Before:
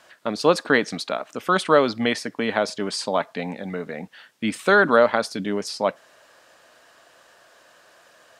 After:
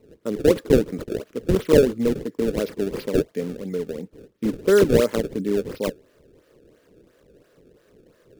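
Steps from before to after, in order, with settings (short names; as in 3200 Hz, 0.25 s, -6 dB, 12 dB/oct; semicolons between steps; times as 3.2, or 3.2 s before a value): decimation with a swept rate 25×, swing 160% 2.9 Hz; resonant low shelf 580 Hz +8.5 dB, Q 3; gain -9 dB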